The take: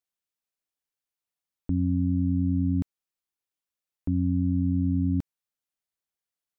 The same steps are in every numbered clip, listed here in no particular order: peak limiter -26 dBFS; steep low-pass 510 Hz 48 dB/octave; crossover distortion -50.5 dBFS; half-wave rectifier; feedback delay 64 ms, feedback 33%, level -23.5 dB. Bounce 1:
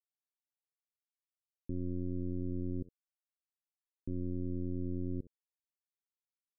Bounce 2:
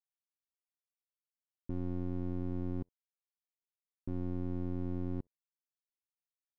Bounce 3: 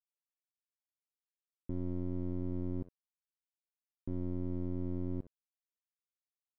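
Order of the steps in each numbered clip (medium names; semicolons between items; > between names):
half-wave rectifier > feedback delay > peak limiter > crossover distortion > steep low-pass; peak limiter > feedback delay > crossover distortion > steep low-pass > half-wave rectifier; half-wave rectifier > feedback delay > peak limiter > steep low-pass > crossover distortion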